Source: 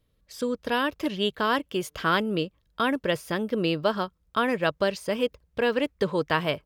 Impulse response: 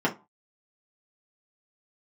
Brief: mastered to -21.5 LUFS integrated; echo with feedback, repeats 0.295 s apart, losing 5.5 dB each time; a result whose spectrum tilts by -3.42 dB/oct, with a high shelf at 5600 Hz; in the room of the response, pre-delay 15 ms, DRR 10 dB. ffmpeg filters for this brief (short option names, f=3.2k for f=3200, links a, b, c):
-filter_complex "[0:a]highshelf=f=5.6k:g=4.5,aecho=1:1:295|590|885|1180|1475|1770|2065:0.531|0.281|0.149|0.079|0.0419|0.0222|0.0118,asplit=2[a][b];[1:a]atrim=start_sample=2205,adelay=15[c];[b][c]afir=irnorm=-1:irlink=0,volume=-22.5dB[d];[a][d]amix=inputs=2:normalize=0,volume=3dB"